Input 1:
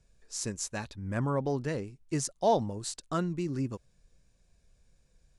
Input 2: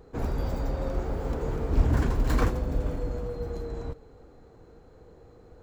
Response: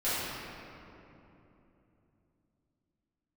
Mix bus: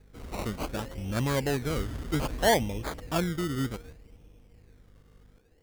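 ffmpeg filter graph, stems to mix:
-filter_complex "[0:a]aeval=exprs='val(0)+0.00112*(sin(2*PI*50*n/s)+sin(2*PI*2*50*n/s)/2+sin(2*PI*3*50*n/s)/3+sin(2*PI*4*50*n/s)/4+sin(2*PI*5*50*n/s)/5)':c=same,volume=2dB[a];[1:a]equalizer=f=3.1k:w=0.67:g=-14,volume=-13.5dB,asplit=2[b][c];[c]volume=-19dB[d];[2:a]atrim=start_sample=2205[e];[d][e]afir=irnorm=-1:irlink=0[f];[a][b][f]amix=inputs=3:normalize=0,acrusher=samples=21:mix=1:aa=0.000001:lfo=1:lforange=12.6:lforate=0.64"

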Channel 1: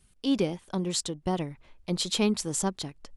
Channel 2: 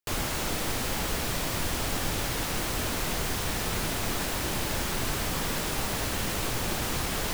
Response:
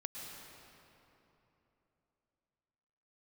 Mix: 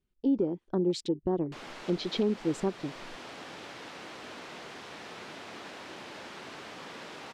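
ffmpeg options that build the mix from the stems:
-filter_complex "[0:a]afwtdn=0.0178,equalizer=f=350:t=o:w=1:g=11.5,volume=-2.5dB[a];[1:a]highpass=260,adelay=1450,volume=-10.5dB[b];[a][b]amix=inputs=2:normalize=0,lowpass=4k,alimiter=limit=-19dB:level=0:latency=1:release=270"

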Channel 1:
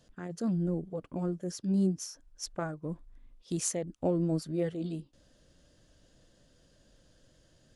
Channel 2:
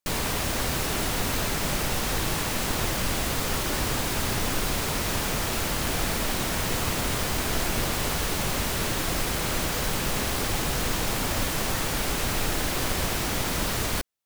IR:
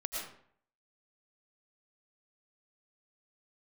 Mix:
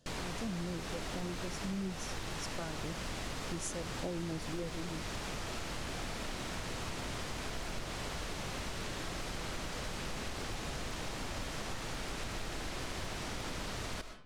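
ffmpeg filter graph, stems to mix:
-filter_complex "[0:a]volume=-2.5dB[a];[1:a]lowpass=7.2k,aeval=exprs='0.112*(abs(mod(val(0)/0.112+3,4)-2)-1)':c=same,volume=-12dB,asplit=2[b][c];[c]volume=-8dB[d];[2:a]atrim=start_sample=2205[e];[d][e]afir=irnorm=-1:irlink=0[f];[a][b][f]amix=inputs=3:normalize=0,acompressor=threshold=-36dB:ratio=4"

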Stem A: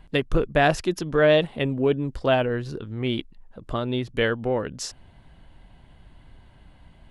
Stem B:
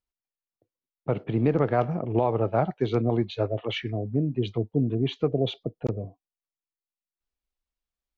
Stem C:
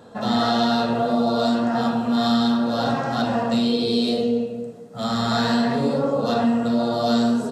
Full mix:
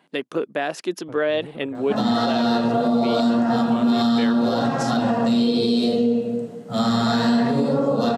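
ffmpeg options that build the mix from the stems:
-filter_complex "[0:a]highpass=f=220:w=0.5412,highpass=f=220:w=1.3066,volume=-0.5dB[a];[1:a]acrusher=bits=10:mix=0:aa=0.000001,volume=-16dB[b];[2:a]highpass=160,lowshelf=f=230:g=10,adelay=1750,volume=2.5dB[c];[a][b][c]amix=inputs=3:normalize=0,alimiter=limit=-11.5dB:level=0:latency=1:release=159"

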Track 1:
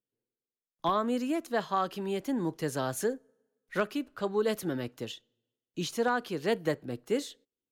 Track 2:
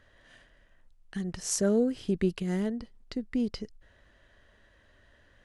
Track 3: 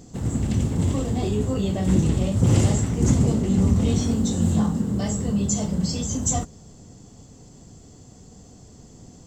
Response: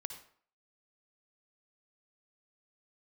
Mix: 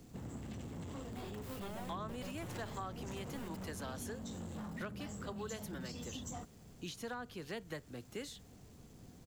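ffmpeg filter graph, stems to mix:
-filter_complex "[0:a]adelay=1050,volume=-5.5dB[a];[1:a]acrusher=bits=5:mix=0:aa=0.000001,equalizer=f=4.8k:w=0.76:g=-8,aeval=exprs='abs(val(0))':c=same,volume=-13.5dB,asplit=2[b][c];[c]volume=-11dB[d];[2:a]aemphasis=mode=reproduction:type=50fm,acrusher=bits=8:mix=0:aa=0.000001,asoftclip=type=tanh:threshold=-20.5dB,volume=-11dB[e];[d]aecho=0:1:1172|2344|3516|4688:1|0.23|0.0529|0.0122[f];[a][b][e][f]amix=inputs=4:normalize=0,acrossover=split=170|880[g][h][i];[g]acompressor=threshold=-51dB:ratio=4[j];[h]acompressor=threshold=-47dB:ratio=4[k];[i]acompressor=threshold=-46dB:ratio=4[l];[j][k][l]amix=inputs=3:normalize=0"

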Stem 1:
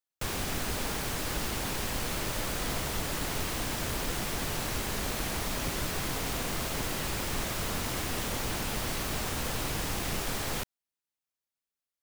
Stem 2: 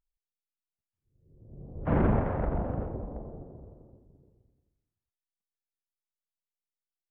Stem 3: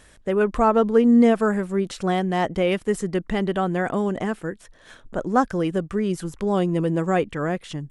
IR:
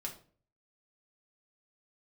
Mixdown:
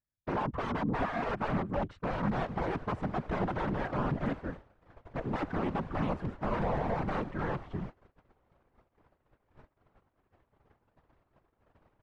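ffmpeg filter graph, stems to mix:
-filter_complex "[0:a]equalizer=f=140:w=1.7:g=-14,adelay=2200,volume=-3dB[a];[2:a]equalizer=f=480:t=o:w=1.3:g=-7.5,aeval=exprs='(mod(10.6*val(0)+1,2)-1)/10.6':c=same,volume=2.5dB[b];[a][b]amix=inputs=2:normalize=0,agate=range=-37dB:threshold=-32dB:ratio=16:detection=peak,lowpass=1.2k,afftfilt=real='hypot(re,im)*cos(2*PI*random(0))':imag='hypot(re,im)*sin(2*PI*random(1))':win_size=512:overlap=0.75"

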